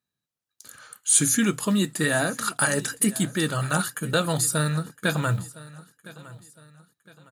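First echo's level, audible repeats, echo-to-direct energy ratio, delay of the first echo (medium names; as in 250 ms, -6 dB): -19.5 dB, 2, -19.0 dB, 1011 ms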